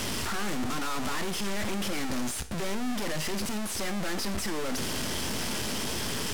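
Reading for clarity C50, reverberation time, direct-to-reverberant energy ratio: 15.0 dB, 0.45 s, 10.5 dB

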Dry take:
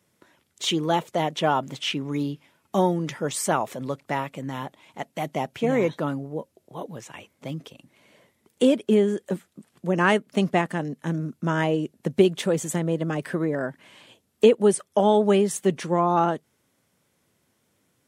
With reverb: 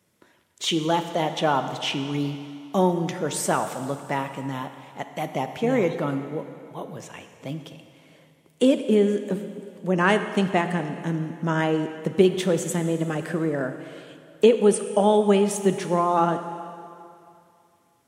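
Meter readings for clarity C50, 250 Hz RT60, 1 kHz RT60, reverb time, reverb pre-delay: 9.0 dB, 2.3 s, 2.6 s, 2.6 s, 12 ms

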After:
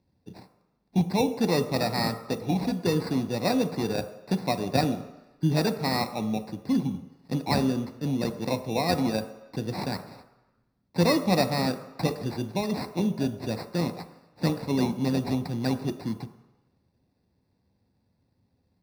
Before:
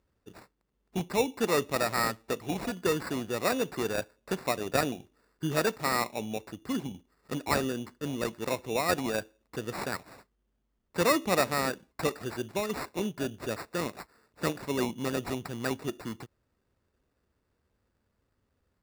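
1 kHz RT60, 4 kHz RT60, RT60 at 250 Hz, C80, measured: 1.1 s, 1.0 s, 0.80 s, 14.0 dB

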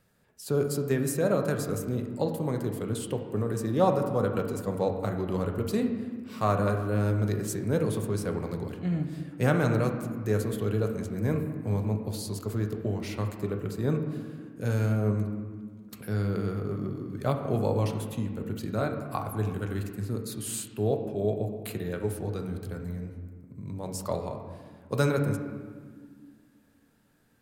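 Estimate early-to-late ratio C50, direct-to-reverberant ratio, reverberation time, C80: 6.5 dB, 4.0 dB, 1.8 s, 8.0 dB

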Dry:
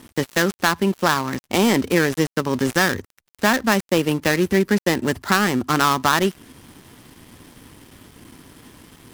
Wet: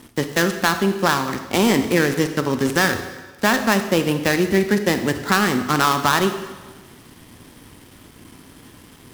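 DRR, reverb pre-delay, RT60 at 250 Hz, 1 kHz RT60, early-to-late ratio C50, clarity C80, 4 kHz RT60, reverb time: 8.0 dB, 26 ms, 1.3 s, 1.3 s, 9.0 dB, 10.5 dB, 1.2 s, 1.3 s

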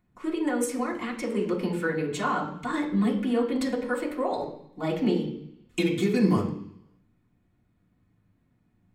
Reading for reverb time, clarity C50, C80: 0.70 s, 8.0 dB, 11.5 dB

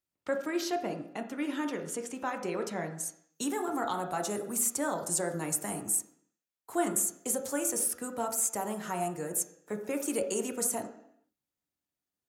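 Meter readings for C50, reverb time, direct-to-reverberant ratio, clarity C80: 8.5 dB, 0.70 s, 4.0 dB, 12.0 dB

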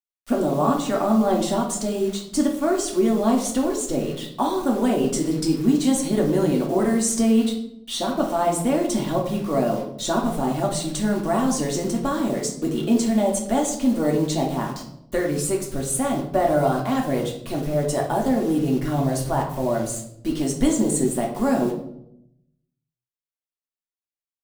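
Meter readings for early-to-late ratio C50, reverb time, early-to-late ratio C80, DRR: 7.0 dB, 0.80 s, 10.5 dB, -0.5 dB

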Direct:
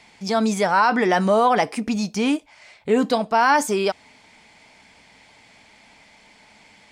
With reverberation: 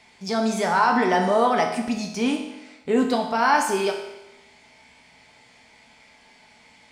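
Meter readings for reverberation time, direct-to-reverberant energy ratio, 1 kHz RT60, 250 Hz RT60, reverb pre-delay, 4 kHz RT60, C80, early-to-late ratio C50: 0.95 s, 2.0 dB, 0.95 s, 0.95 s, 5 ms, 0.95 s, 8.5 dB, 6.5 dB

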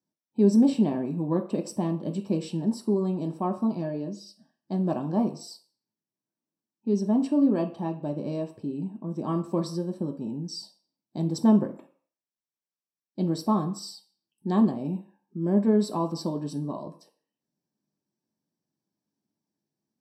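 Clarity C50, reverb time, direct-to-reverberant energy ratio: 13.0 dB, 0.50 s, 3.0 dB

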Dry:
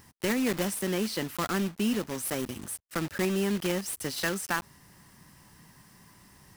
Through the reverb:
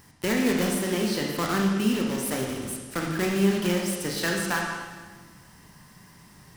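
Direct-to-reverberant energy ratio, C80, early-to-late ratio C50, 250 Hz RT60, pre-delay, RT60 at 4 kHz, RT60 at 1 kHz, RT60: -0.5 dB, 4.0 dB, 2.0 dB, 1.7 s, 17 ms, 1.4 s, 1.4 s, 1.5 s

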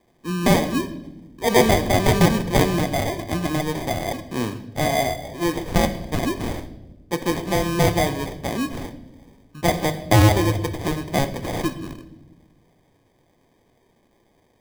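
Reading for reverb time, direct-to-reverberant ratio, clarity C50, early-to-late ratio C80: 1.0 s, 8.5 dB, 13.0 dB, 15.5 dB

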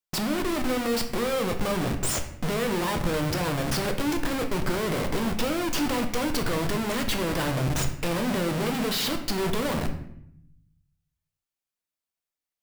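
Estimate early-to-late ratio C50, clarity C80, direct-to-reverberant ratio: 9.0 dB, 12.0 dB, 4.5 dB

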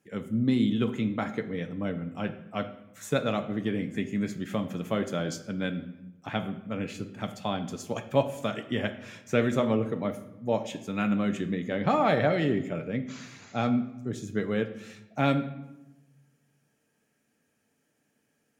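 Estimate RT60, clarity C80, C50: 1.0 s, 14.0 dB, 12.0 dB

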